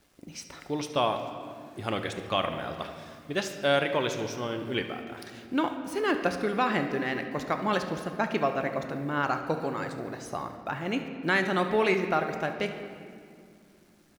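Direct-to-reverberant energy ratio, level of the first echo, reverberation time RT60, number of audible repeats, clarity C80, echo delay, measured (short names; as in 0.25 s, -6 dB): 6.0 dB, -15.5 dB, 2.4 s, 1, 8.5 dB, 71 ms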